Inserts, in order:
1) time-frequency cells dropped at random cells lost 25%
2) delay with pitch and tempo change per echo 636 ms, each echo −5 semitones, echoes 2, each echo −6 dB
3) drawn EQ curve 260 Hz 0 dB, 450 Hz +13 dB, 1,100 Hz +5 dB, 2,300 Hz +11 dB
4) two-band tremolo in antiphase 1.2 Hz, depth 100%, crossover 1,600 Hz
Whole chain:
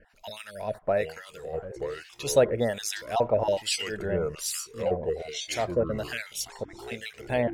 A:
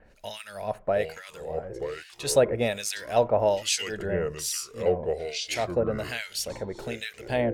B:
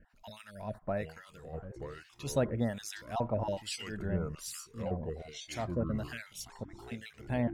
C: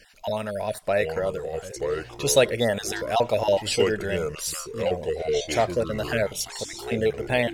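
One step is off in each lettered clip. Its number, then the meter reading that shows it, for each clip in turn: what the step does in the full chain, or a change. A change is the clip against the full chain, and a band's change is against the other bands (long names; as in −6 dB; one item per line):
1, change in integrated loudness +1.0 LU
3, 125 Hz band +10.0 dB
4, change in momentary loudness spread −4 LU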